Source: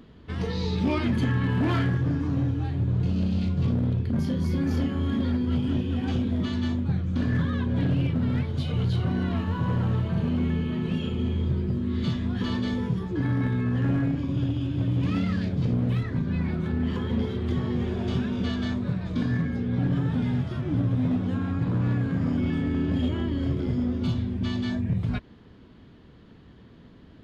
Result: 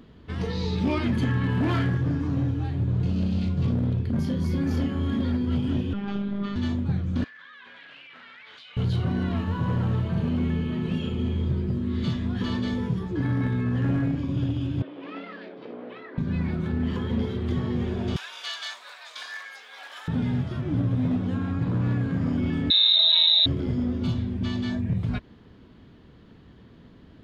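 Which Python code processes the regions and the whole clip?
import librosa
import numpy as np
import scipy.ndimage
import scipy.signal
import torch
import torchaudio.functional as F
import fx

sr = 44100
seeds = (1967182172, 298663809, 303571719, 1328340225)

y = fx.chain(x, sr, fx.lowpass(hz=3600.0, slope=12),
    fx.peak_eq(hz=1300.0, db=11.5, octaves=0.3),
    fx.robotise(hz=200.0), at=(5.93, 6.56))
y = fx.chain(y, sr, fx.ladder_bandpass(hz=2400.0, resonance_pct=25),
    fx.env_flatten(amount_pct=100), at=(7.24, 8.77))
y = fx.chain(y, sr, fx.highpass(hz=360.0, slope=24),
    fx.air_absorb(metres=330.0), at=(14.82, 16.18))
y = fx.chain(y, sr, fx.highpass(hz=730.0, slope=24),
    fx.tilt_eq(slope=4.0), at=(18.16, 20.08))
y = fx.chain(y, sr, fx.low_shelf(hz=220.0, db=6.0),
    fx.freq_invert(carrier_hz=3900),
    fx.env_flatten(amount_pct=100), at=(22.7, 23.46))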